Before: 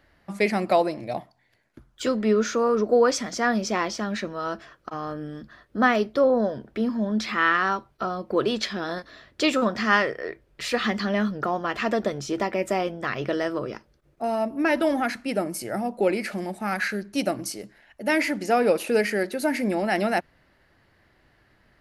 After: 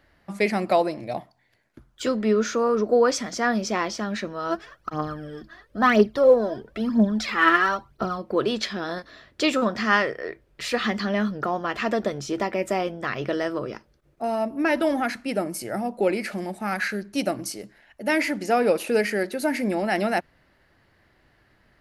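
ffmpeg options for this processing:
-filter_complex "[0:a]asplit=3[a][b][c];[a]afade=t=out:st=4.49:d=0.02[d];[b]aphaser=in_gain=1:out_gain=1:delay=3.2:decay=0.65:speed=1:type=triangular,afade=t=in:st=4.49:d=0.02,afade=t=out:st=8.17:d=0.02[e];[c]afade=t=in:st=8.17:d=0.02[f];[d][e][f]amix=inputs=3:normalize=0"

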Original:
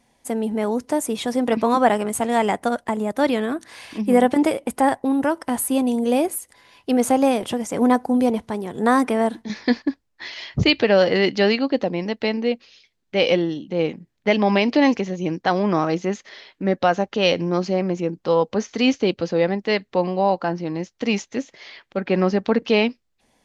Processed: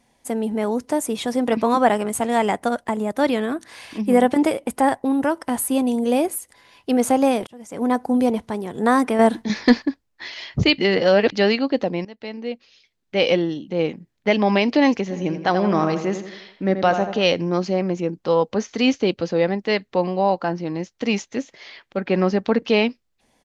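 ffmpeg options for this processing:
-filter_complex "[0:a]asettb=1/sr,asplit=3[a][b][c];[a]atrim=end=9.194[d];[b]atrim=start=9.19:end=9.86,asetpts=PTS-STARTPTS,afade=t=in:d=0.004:c=qsin,afade=t=out:st=0.666:d=0.004:c=qsin,acontrast=56[e];[c]atrim=start=9.856[f];[d][e]acrossfade=d=0.004:c1=hsin:c2=qsin[g];[g][f]acrossfade=d=0.004:c1=qsin:c2=hsin,asplit=3[h][i][j];[h]afade=t=out:st=15.1:d=0.02[k];[i]asplit=2[l][m];[m]adelay=83,lowpass=f=3.6k:p=1,volume=-8.5dB,asplit=2[n][o];[o]adelay=83,lowpass=f=3.6k:p=1,volume=0.48,asplit=2[p][q];[q]adelay=83,lowpass=f=3.6k:p=1,volume=0.48,asplit=2[r][s];[s]adelay=83,lowpass=f=3.6k:p=1,volume=0.48,asplit=2[t][u];[u]adelay=83,lowpass=f=3.6k:p=1,volume=0.48[v];[l][n][p][r][t][v]amix=inputs=6:normalize=0,afade=t=in:st=15.1:d=0.02,afade=t=out:st=17.23:d=0.02[w];[j]afade=t=in:st=17.23:d=0.02[x];[k][w][x]amix=inputs=3:normalize=0,asplit=5[y][z][aa][ab][ac];[y]atrim=end=7.47,asetpts=PTS-STARTPTS,afade=t=out:st=7.466:d=0.004:c=hsin[ad];[z]atrim=start=7.47:end=10.782,asetpts=PTS-STARTPTS,afade=t=in:d=0.64[ae];[aa]atrim=start=10.778:end=11.322,asetpts=PTS-STARTPTS,areverse[af];[ab]atrim=start=11.318:end=12.05,asetpts=PTS-STARTPTS,afade=t=out:st=0.728:d=0.004:c=hsin:silence=0.133352[ag];[ac]atrim=start=12.05,asetpts=PTS-STARTPTS,afade=t=in:d=1.16:silence=0.133352[ah];[ad][ae]concat=n=2:v=0:a=1[ai];[ai][af]acrossfade=d=0.004:c1=hsin:c2=hsin[aj];[ag][ah]concat=n=2:v=0:a=1[ak];[aj][ak]acrossfade=d=0.004:c1=hsin:c2=hsin"

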